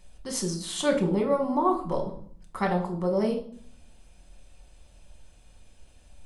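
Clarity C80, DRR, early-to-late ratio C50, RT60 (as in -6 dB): 13.5 dB, 1.0 dB, 9.5 dB, 0.55 s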